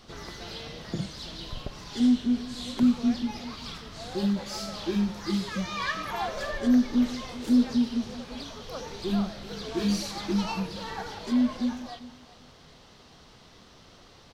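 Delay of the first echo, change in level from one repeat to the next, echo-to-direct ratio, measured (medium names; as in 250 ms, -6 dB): 392 ms, -15.5 dB, -17.5 dB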